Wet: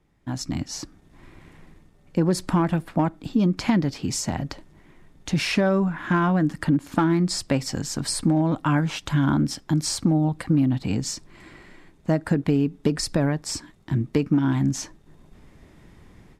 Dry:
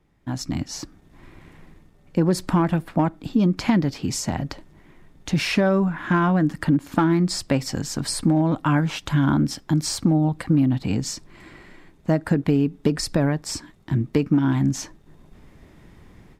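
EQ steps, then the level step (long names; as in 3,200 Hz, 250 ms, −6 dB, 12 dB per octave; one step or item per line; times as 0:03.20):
low-pass filter 11,000 Hz 12 dB per octave
high-shelf EQ 8,600 Hz +6 dB
−1.5 dB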